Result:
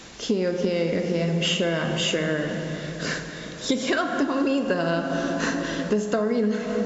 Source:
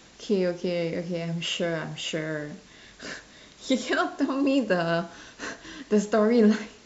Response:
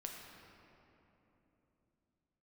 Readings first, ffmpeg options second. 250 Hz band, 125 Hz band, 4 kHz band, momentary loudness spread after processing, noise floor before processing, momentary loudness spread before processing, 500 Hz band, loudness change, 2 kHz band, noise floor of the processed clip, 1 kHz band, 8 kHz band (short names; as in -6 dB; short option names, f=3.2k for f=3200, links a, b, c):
+1.5 dB, +4.5 dB, +5.5 dB, 6 LU, -52 dBFS, 17 LU, +2.0 dB, +1.0 dB, +4.0 dB, -36 dBFS, +2.5 dB, n/a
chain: -filter_complex "[0:a]asplit=2[a][b];[1:a]atrim=start_sample=2205,asetrate=32193,aresample=44100[c];[b][c]afir=irnorm=-1:irlink=0,volume=1.5dB[d];[a][d]amix=inputs=2:normalize=0,acompressor=threshold=-23dB:ratio=12,volume=3.5dB"